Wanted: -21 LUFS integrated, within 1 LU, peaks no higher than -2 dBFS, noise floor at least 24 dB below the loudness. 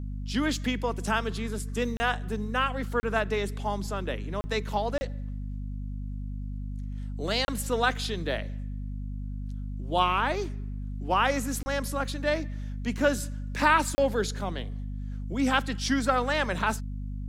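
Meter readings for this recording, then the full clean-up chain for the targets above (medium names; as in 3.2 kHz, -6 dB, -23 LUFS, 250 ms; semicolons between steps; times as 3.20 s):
dropouts 7; longest dropout 30 ms; hum 50 Hz; highest harmonic 250 Hz; hum level -32 dBFS; loudness -29.5 LUFS; peak level -8.5 dBFS; loudness target -21.0 LUFS
-> interpolate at 1.97/3.00/4.41/4.98/7.45/11.63/13.95 s, 30 ms; de-hum 50 Hz, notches 5; trim +8.5 dB; peak limiter -2 dBFS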